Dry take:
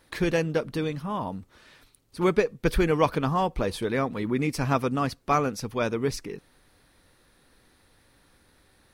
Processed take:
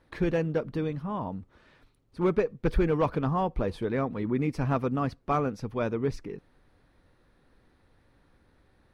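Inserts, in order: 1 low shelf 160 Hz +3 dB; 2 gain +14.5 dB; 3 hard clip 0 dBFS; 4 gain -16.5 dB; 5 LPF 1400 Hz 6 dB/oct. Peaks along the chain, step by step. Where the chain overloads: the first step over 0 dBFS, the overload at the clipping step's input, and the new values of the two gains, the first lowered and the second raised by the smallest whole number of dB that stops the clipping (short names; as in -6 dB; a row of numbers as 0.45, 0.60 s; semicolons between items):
-7.5, +7.0, 0.0, -16.5, -16.5 dBFS; step 2, 7.0 dB; step 2 +7.5 dB, step 4 -9.5 dB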